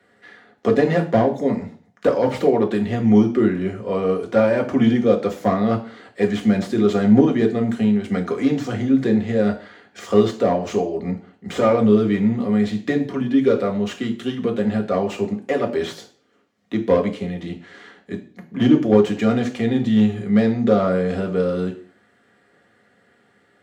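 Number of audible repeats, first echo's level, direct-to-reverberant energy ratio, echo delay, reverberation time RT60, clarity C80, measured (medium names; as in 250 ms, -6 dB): no echo, no echo, 1.0 dB, no echo, 0.45 s, 17.0 dB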